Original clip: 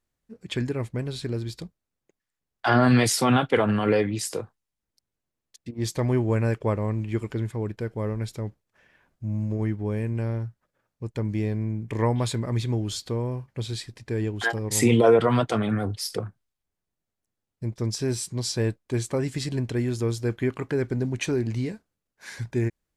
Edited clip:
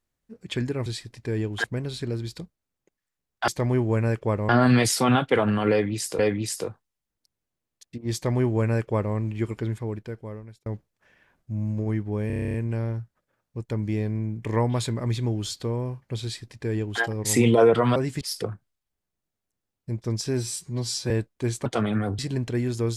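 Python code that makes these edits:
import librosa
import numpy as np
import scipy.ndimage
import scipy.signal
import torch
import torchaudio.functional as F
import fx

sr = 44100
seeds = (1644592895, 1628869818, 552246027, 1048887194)

y = fx.edit(x, sr, fx.repeat(start_s=3.92, length_s=0.48, count=2),
    fx.duplicate(start_s=5.87, length_s=1.01, to_s=2.7),
    fx.fade_out_span(start_s=7.47, length_s=0.92),
    fx.stutter(start_s=10.0, slice_s=0.03, count=10),
    fx.duplicate(start_s=13.69, length_s=0.78, to_s=0.86),
    fx.swap(start_s=15.42, length_s=0.53, other_s=19.15, other_length_s=0.25),
    fx.stretch_span(start_s=18.11, length_s=0.49, factor=1.5), tone=tone)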